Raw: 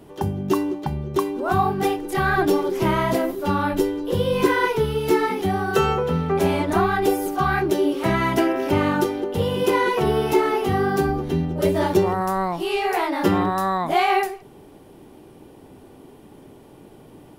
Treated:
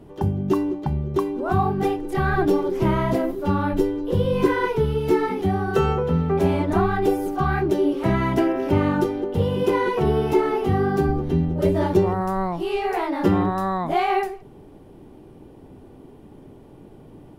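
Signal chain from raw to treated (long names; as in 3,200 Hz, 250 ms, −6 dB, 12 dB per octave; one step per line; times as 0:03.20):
spectral tilt −2 dB per octave
level −3 dB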